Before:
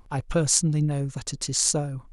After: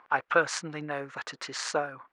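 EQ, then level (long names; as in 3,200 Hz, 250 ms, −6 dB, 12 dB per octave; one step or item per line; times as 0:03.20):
high-pass filter 500 Hz 12 dB per octave
low-pass filter 2,800 Hz 12 dB per octave
parametric band 1,500 Hz +13 dB 1.5 octaves
0.0 dB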